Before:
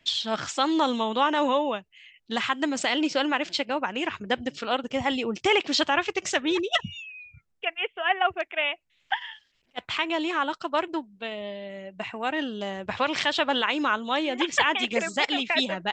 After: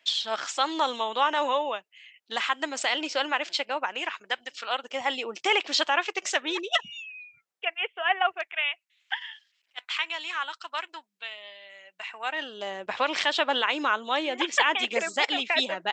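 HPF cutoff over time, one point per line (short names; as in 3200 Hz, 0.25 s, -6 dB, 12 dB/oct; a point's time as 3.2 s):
3.88 s 550 Hz
4.45 s 1100 Hz
5.05 s 530 Hz
8.21 s 530 Hz
8.66 s 1400 Hz
11.97 s 1400 Hz
12.76 s 370 Hz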